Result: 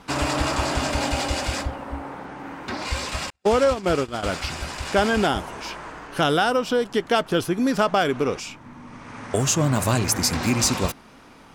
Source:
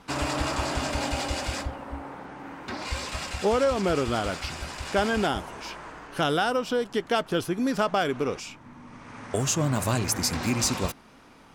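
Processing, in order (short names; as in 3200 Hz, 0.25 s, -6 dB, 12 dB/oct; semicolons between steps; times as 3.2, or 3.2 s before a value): 3.3–4.23 gate -24 dBFS, range -49 dB; gain +4.5 dB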